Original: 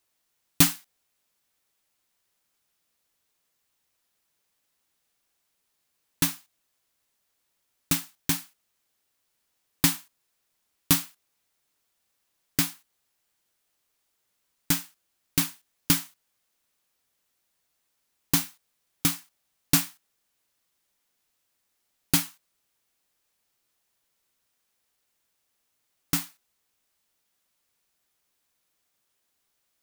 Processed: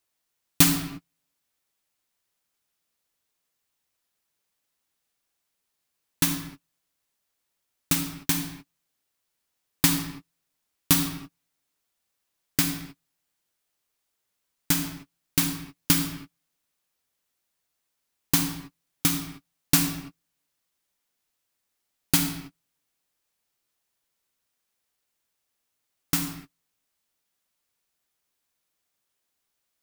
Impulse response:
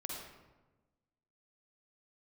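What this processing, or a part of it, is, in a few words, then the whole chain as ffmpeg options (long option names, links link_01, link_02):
keyed gated reverb: -filter_complex "[0:a]asplit=3[link_01][link_02][link_03];[1:a]atrim=start_sample=2205[link_04];[link_02][link_04]afir=irnorm=-1:irlink=0[link_05];[link_03]apad=whole_len=1315494[link_06];[link_05][link_06]sidechaingate=range=-43dB:threshold=-57dB:ratio=16:detection=peak,volume=1dB[link_07];[link_01][link_07]amix=inputs=2:normalize=0,volume=-3.5dB"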